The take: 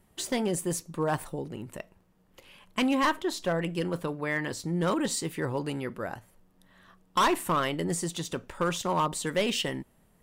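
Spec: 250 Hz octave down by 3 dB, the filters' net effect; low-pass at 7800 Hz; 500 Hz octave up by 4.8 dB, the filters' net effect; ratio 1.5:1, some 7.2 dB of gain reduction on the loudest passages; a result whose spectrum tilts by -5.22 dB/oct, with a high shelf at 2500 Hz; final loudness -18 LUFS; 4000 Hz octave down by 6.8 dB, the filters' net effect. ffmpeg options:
-af "lowpass=7.8k,equalizer=f=250:t=o:g=-7.5,equalizer=f=500:t=o:g=8,highshelf=f=2.5k:g=-4.5,equalizer=f=4k:t=o:g=-5.5,acompressor=threshold=-39dB:ratio=1.5,volume=17dB"

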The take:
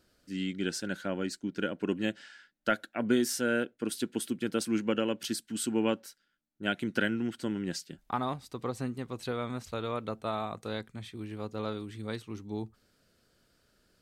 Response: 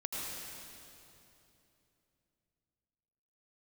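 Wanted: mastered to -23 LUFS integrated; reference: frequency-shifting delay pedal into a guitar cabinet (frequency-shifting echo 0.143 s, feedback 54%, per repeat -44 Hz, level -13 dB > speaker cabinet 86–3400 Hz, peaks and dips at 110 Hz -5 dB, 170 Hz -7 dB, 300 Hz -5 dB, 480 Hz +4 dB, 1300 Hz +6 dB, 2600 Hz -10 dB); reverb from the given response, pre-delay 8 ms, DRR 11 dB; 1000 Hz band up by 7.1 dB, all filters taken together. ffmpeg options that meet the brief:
-filter_complex "[0:a]equalizer=f=1k:t=o:g=6,asplit=2[a][b];[1:a]atrim=start_sample=2205,adelay=8[c];[b][c]afir=irnorm=-1:irlink=0,volume=-14dB[d];[a][d]amix=inputs=2:normalize=0,asplit=7[e][f][g][h][i][j][k];[f]adelay=143,afreqshift=-44,volume=-13dB[l];[g]adelay=286,afreqshift=-88,volume=-18.4dB[m];[h]adelay=429,afreqshift=-132,volume=-23.7dB[n];[i]adelay=572,afreqshift=-176,volume=-29.1dB[o];[j]adelay=715,afreqshift=-220,volume=-34.4dB[p];[k]adelay=858,afreqshift=-264,volume=-39.8dB[q];[e][l][m][n][o][p][q]amix=inputs=7:normalize=0,highpass=86,equalizer=f=110:t=q:w=4:g=-5,equalizer=f=170:t=q:w=4:g=-7,equalizer=f=300:t=q:w=4:g=-5,equalizer=f=480:t=q:w=4:g=4,equalizer=f=1.3k:t=q:w=4:g=6,equalizer=f=2.6k:t=q:w=4:g=-10,lowpass=f=3.4k:w=0.5412,lowpass=f=3.4k:w=1.3066,volume=8.5dB"

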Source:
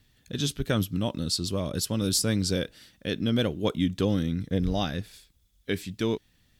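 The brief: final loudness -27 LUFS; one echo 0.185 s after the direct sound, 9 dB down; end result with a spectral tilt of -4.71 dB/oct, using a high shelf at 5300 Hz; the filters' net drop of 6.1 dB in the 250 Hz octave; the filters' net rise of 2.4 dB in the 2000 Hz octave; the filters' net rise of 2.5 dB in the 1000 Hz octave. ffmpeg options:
-af "equalizer=f=250:t=o:g=-8.5,equalizer=f=1k:t=o:g=3.5,equalizer=f=2k:t=o:g=3,highshelf=f=5.3k:g=-7.5,aecho=1:1:185:0.355,volume=3.5dB"

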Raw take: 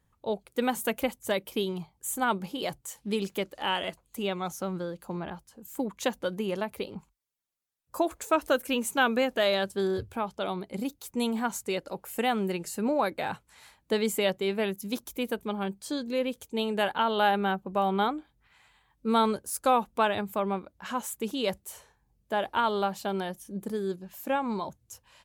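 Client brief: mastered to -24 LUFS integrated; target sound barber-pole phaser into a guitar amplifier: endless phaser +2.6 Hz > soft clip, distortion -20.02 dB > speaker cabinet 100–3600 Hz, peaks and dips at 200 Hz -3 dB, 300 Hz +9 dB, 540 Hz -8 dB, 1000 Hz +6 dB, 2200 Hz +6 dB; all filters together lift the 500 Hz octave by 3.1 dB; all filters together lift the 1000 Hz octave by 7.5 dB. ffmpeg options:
-filter_complex "[0:a]equalizer=f=500:t=o:g=5.5,equalizer=f=1k:t=o:g=4.5,asplit=2[a][b];[b]afreqshift=2.6[c];[a][c]amix=inputs=2:normalize=1,asoftclip=threshold=-13.5dB,highpass=100,equalizer=f=200:t=q:w=4:g=-3,equalizer=f=300:t=q:w=4:g=9,equalizer=f=540:t=q:w=4:g=-8,equalizer=f=1k:t=q:w=4:g=6,equalizer=f=2.2k:t=q:w=4:g=6,lowpass=f=3.6k:w=0.5412,lowpass=f=3.6k:w=1.3066,volume=5.5dB"

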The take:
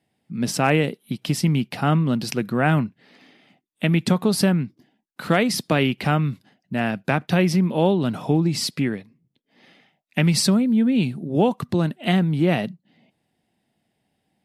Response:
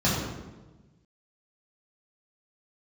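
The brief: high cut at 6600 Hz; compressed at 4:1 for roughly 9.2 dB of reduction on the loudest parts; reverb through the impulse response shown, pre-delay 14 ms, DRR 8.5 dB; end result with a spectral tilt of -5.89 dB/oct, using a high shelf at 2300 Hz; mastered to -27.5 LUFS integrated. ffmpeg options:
-filter_complex "[0:a]lowpass=6.6k,highshelf=f=2.3k:g=6,acompressor=threshold=-24dB:ratio=4,asplit=2[a][b];[1:a]atrim=start_sample=2205,adelay=14[c];[b][c]afir=irnorm=-1:irlink=0,volume=-23dB[d];[a][d]amix=inputs=2:normalize=0,volume=-3dB"

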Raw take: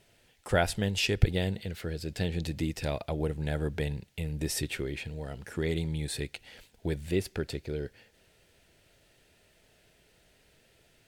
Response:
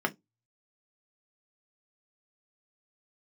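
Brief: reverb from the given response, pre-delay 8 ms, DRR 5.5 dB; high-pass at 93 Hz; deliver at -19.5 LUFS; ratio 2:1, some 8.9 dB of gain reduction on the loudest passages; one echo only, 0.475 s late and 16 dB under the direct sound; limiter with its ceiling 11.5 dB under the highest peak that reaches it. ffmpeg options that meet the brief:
-filter_complex "[0:a]highpass=93,acompressor=threshold=-35dB:ratio=2,alimiter=level_in=5dB:limit=-24dB:level=0:latency=1,volume=-5dB,aecho=1:1:475:0.158,asplit=2[a][b];[1:a]atrim=start_sample=2205,adelay=8[c];[b][c]afir=irnorm=-1:irlink=0,volume=-14.5dB[d];[a][d]amix=inputs=2:normalize=0,volume=21dB"

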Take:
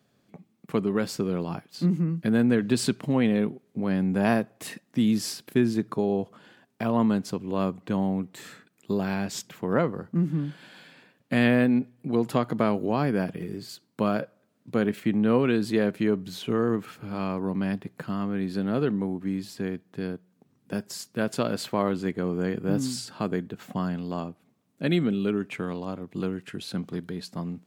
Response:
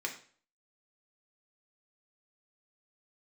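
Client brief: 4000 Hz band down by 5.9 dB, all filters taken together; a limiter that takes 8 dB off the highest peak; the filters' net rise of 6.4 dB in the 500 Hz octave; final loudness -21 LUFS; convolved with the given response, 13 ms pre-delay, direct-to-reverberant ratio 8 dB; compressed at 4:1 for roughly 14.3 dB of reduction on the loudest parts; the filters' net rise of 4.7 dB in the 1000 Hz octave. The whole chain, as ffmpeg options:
-filter_complex "[0:a]equalizer=f=500:t=o:g=7,equalizer=f=1k:t=o:g=4,equalizer=f=4k:t=o:g=-8,acompressor=threshold=-31dB:ratio=4,alimiter=level_in=0.5dB:limit=-24dB:level=0:latency=1,volume=-0.5dB,asplit=2[a][b];[1:a]atrim=start_sample=2205,adelay=13[c];[b][c]afir=irnorm=-1:irlink=0,volume=-11dB[d];[a][d]amix=inputs=2:normalize=0,volume=15.5dB"

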